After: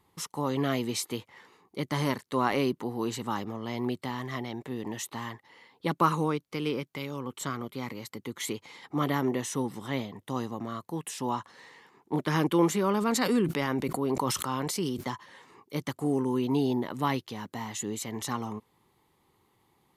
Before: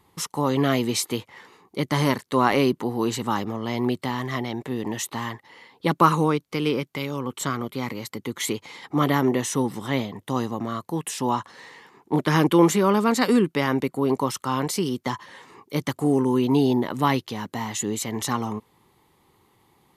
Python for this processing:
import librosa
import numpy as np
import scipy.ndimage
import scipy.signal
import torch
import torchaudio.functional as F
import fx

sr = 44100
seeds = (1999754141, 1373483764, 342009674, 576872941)

y = fx.sustainer(x, sr, db_per_s=31.0, at=(13.0, 15.09), fade=0.02)
y = F.gain(torch.from_numpy(y), -7.0).numpy()